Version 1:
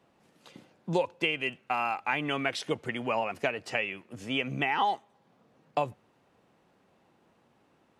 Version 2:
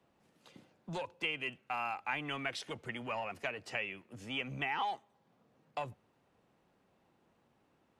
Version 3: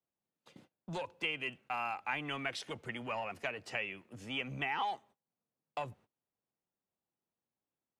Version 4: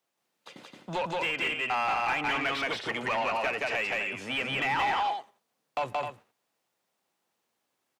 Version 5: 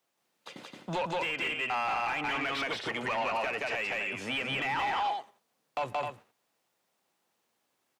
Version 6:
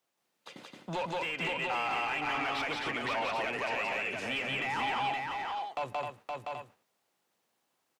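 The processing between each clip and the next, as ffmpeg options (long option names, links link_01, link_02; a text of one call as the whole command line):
ffmpeg -i in.wav -filter_complex "[0:a]lowshelf=frequency=68:gain=8,acrossover=split=120|790[link_01][link_02][link_03];[link_02]asoftclip=type=tanh:threshold=-35dB[link_04];[link_01][link_04][link_03]amix=inputs=3:normalize=0,volume=-6.5dB" out.wav
ffmpeg -i in.wav -af "agate=range=-24dB:threshold=-60dB:ratio=16:detection=peak" out.wav
ffmpeg -i in.wav -filter_complex "[0:a]aecho=1:1:174.9|259.5:0.794|0.282,asplit=2[link_01][link_02];[link_02]highpass=frequency=720:poles=1,volume=21dB,asoftclip=type=tanh:threshold=-19.5dB[link_03];[link_01][link_03]amix=inputs=2:normalize=0,lowpass=frequency=6100:poles=1,volume=-6dB,acrossover=split=3400[link_04][link_05];[link_05]acompressor=threshold=-47dB:ratio=4:attack=1:release=60[link_06];[link_04][link_06]amix=inputs=2:normalize=0" out.wav
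ffmpeg -i in.wav -af "alimiter=level_in=3dB:limit=-24dB:level=0:latency=1:release=219,volume=-3dB,volume=2dB" out.wav
ffmpeg -i in.wav -af "aecho=1:1:519:0.668,volume=-2.5dB" out.wav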